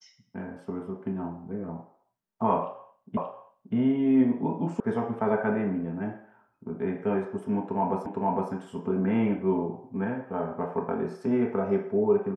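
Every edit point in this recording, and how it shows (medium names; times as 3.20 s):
3.17 s: repeat of the last 0.58 s
4.80 s: sound stops dead
8.06 s: repeat of the last 0.46 s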